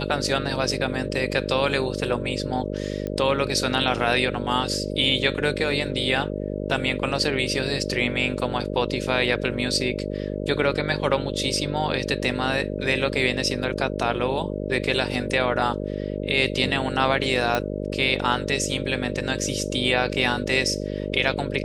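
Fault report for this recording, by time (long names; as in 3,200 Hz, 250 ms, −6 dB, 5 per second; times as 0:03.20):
mains buzz 50 Hz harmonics 12 −29 dBFS
0:03.07: click −18 dBFS
0:17.55: click −9 dBFS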